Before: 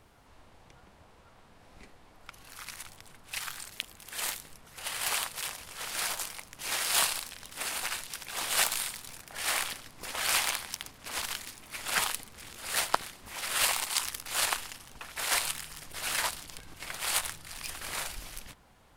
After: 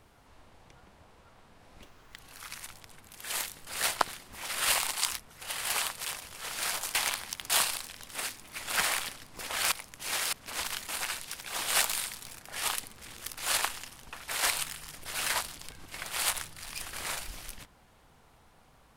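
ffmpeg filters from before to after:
-filter_complex "[0:a]asplit=15[a][b][c][d][e][f][g][h][i][j][k][l][m][n][o];[a]atrim=end=1.824[p];[b]atrim=start=1.82:end=2.36,asetpts=PTS-STARTPTS,asetrate=63063,aresample=44100,atrim=end_sample=16653,asetpts=PTS-STARTPTS[q];[c]atrim=start=2.356:end=3.202[r];[d]atrim=start=3.918:end=4.552[s];[e]atrim=start=12.598:end=14.122[t];[f]atrim=start=4.548:end=6.312[u];[g]atrim=start=10.358:end=10.912[v];[h]atrim=start=6.918:end=7.712[w];[i]atrim=start=11.468:end=12.012[x];[j]atrim=start=9.468:end=10.362[y];[k]atrim=start=6.308:end=6.922[z];[l]atrim=start=10.908:end=11.472[aa];[m]atrim=start=7.708:end=9.472[ab];[n]atrim=start=12.008:end=12.602[ac];[o]atrim=start=14.118[ad];[p][q]acrossfade=d=0.004:c1=hsin:c2=hsin[ae];[ae][r]acrossfade=d=0.004:c1=hsin:c2=hsin[af];[af][s]acrossfade=d=0.004:c1=hsin:c2=hsin[ag];[ag][t]acrossfade=d=0.004:c1=hsin:c2=hsin[ah];[ah][u]acrossfade=d=0.004:c1=hsin:c2=hsin[ai];[ai][v]acrossfade=d=0.004:c1=hsin:c2=hsin[aj];[aj][w]acrossfade=d=0.004:c1=hsin:c2=hsin[ak];[ak][x]acrossfade=d=0.004:c1=hsin:c2=hsin[al];[al][y]acrossfade=d=0.004:c1=hsin:c2=hsin[am];[am][z]acrossfade=d=0.004:c1=hsin:c2=hsin[an];[an][aa]acrossfade=d=0.004:c1=hsin:c2=hsin[ao];[ao][ab]acrossfade=d=0.004:c1=hsin:c2=hsin[ap];[ap][ac]acrossfade=d=0.004:c1=hsin:c2=hsin[aq];[aq][ad]acrossfade=d=0.004:c1=hsin:c2=hsin"

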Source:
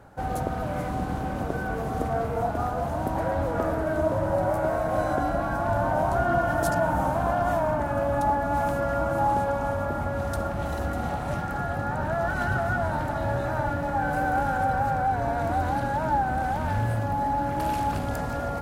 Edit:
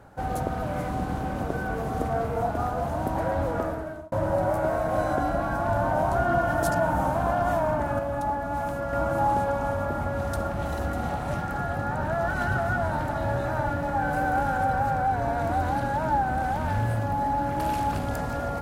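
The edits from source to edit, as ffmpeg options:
-filter_complex "[0:a]asplit=4[a][b][c][d];[a]atrim=end=4.12,asetpts=PTS-STARTPTS,afade=t=out:st=3.5:d=0.62[e];[b]atrim=start=4.12:end=7.992,asetpts=PTS-STARTPTS,afade=t=in:d=0.004:c=hsin[f];[c]atrim=start=7.988:end=8.932,asetpts=PTS-STARTPTS,volume=-4dB[g];[d]atrim=start=8.928[h];[e][f]concat=n=2:v=0:a=1[i];[i][g]acrossfade=d=0.004:c1=hsin:c2=hsin[j];[j][h]acrossfade=d=0.004:c1=hsin:c2=hsin"

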